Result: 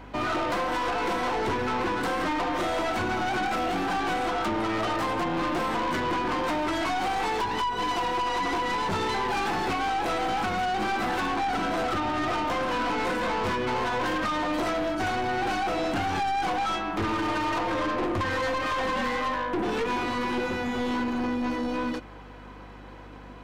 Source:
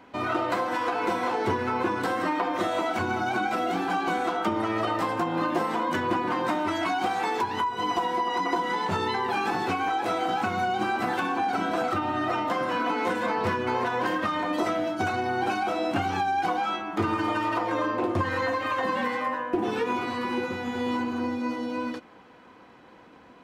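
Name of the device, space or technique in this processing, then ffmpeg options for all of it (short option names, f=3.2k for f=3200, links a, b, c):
valve amplifier with mains hum: -af "aeval=exprs='(tanh(31.6*val(0)+0.2)-tanh(0.2))/31.6':c=same,aeval=exprs='val(0)+0.00251*(sin(2*PI*50*n/s)+sin(2*PI*2*50*n/s)/2+sin(2*PI*3*50*n/s)/3+sin(2*PI*4*50*n/s)/4+sin(2*PI*5*50*n/s)/5)':c=same,volume=5.5dB"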